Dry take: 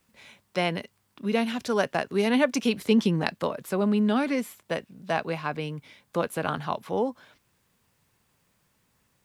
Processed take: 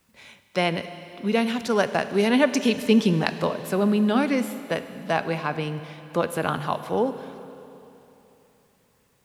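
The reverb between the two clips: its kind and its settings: Schroeder reverb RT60 3.2 s, combs from 33 ms, DRR 11 dB; gain +3 dB

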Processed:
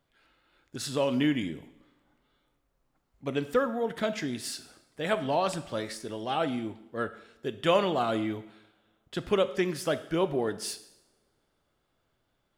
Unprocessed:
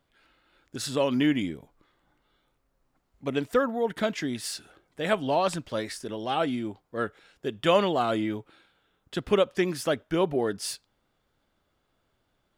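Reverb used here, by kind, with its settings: two-slope reverb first 0.8 s, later 2.8 s, from -28 dB, DRR 11 dB; gain -2.5 dB

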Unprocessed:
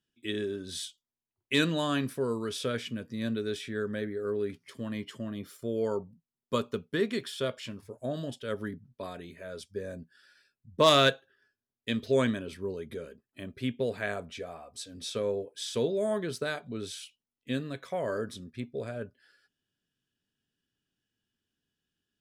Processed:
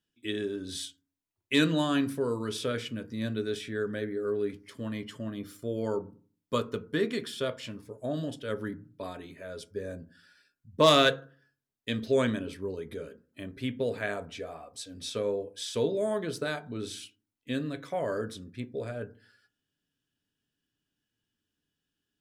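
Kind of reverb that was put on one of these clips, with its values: FDN reverb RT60 0.41 s, low-frequency decay 1.4×, high-frequency decay 0.3×, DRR 10.5 dB

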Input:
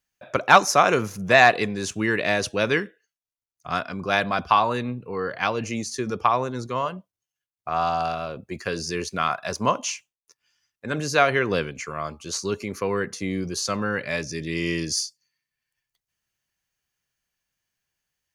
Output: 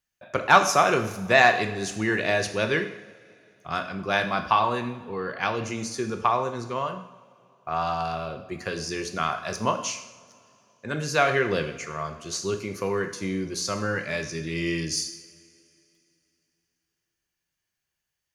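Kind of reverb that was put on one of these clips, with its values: two-slope reverb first 0.71 s, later 3 s, from -19 dB, DRR 5.5 dB; gain -3 dB

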